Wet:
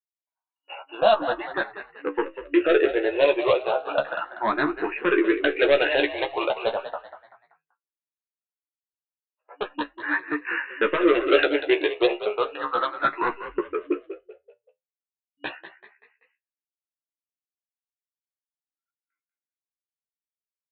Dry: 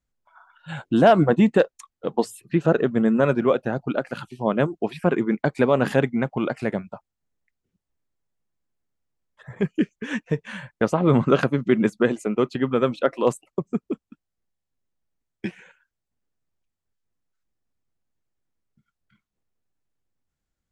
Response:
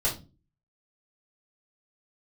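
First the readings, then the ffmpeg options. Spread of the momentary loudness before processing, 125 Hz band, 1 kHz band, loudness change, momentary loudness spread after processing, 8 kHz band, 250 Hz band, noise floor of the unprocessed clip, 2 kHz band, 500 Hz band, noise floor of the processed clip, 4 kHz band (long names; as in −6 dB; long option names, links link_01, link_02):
15 LU, below −20 dB, +0.5 dB, −1.5 dB, 16 LU, below −30 dB, −6.0 dB, −84 dBFS, +4.5 dB, −0.5 dB, below −85 dBFS, +7.0 dB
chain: -filter_complex "[0:a]aeval=exprs='val(0)+0.00891*(sin(2*PI*50*n/s)+sin(2*PI*2*50*n/s)/2+sin(2*PI*3*50*n/s)/3+sin(2*PI*4*50*n/s)/4+sin(2*PI*5*50*n/s)/5)':channel_layout=same,agate=range=-37dB:threshold=-35dB:ratio=16:detection=peak,adynamicequalizer=threshold=0.0282:dfrequency=430:dqfactor=1.1:tfrequency=430:tqfactor=1.1:attack=5:release=100:ratio=0.375:range=2:mode=cutabove:tftype=bell,afftfilt=real='re*between(b*sr/4096,280,2900)':imag='im*between(b*sr/4096,280,2900)':win_size=4096:overlap=0.75,dynaudnorm=framelen=300:gausssize=9:maxgain=14.5dB,aresample=8000,asoftclip=type=tanh:threshold=-11.5dB,aresample=44100,flanger=delay=5.4:depth=9.2:regen=65:speed=0.12:shape=triangular,equalizer=frequency=2200:width_type=o:width=0.41:gain=-5,crystalizer=i=7.5:c=0,asplit=2[link_01][link_02];[link_02]adelay=14,volume=-5dB[link_03];[link_01][link_03]amix=inputs=2:normalize=0,asplit=2[link_04][link_05];[link_05]asplit=4[link_06][link_07][link_08][link_09];[link_06]adelay=192,afreqshift=39,volume=-12dB[link_10];[link_07]adelay=384,afreqshift=78,volume=-20.4dB[link_11];[link_08]adelay=576,afreqshift=117,volume=-28.8dB[link_12];[link_09]adelay=768,afreqshift=156,volume=-37.2dB[link_13];[link_10][link_11][link_12][link_13]amix=inputs=4:normalize=0[link_14];[link_04][link_14]amix=inputs=2:normalize=0,asplit=2[link_15][link_16];[link_16]afreqshift=0.35[link_17];[link_15][link_17]amix=inputs=2:normalize=1,volume=2.5dB"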